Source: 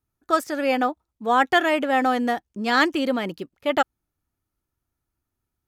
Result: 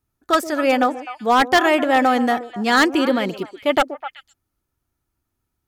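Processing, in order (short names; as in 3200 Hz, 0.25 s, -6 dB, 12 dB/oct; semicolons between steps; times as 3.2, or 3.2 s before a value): delay with a stepping band-pass 0.127 s, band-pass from 390 Hz, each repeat 1.4 oct, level -8.5 dB; wavefolder -12 dBFS; gain +4.5 dB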